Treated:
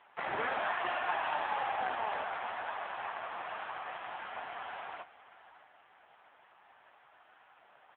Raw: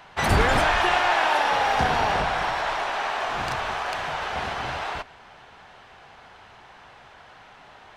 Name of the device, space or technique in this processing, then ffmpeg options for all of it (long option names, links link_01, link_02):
satellite phone: -af "highpass=380,lowpass=3400,aecho=1:1:618:0.141,volume=-8.5dB" -ar 8000 -c:a libopencore_amrnb -b:a 5900